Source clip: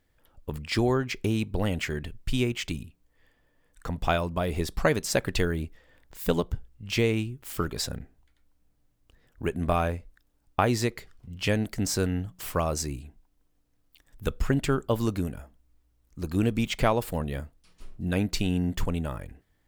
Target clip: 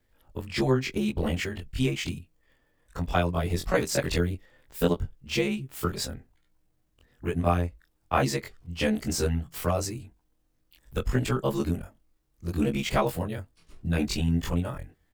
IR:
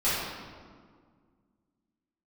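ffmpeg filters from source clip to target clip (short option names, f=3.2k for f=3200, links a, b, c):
-af "afftfilt=real='re':imag='-im':win_size=2048:overlap=0.75,atempo=1.3,volume=4.5dB"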